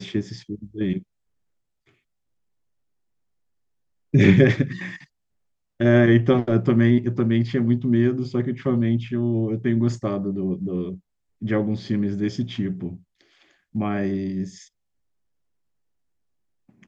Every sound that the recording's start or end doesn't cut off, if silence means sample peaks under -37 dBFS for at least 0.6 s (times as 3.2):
4.14–5.04
5.8–12.97
13.75–14.62